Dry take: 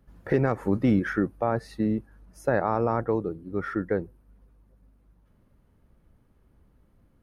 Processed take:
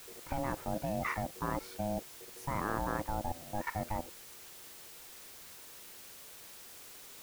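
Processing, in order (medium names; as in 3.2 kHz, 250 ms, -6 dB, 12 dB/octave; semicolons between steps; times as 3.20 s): level held to a coarse grid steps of 17 dB; ring modulator 420 Hz; added noise white -54 dBFS; trim +2.5 dB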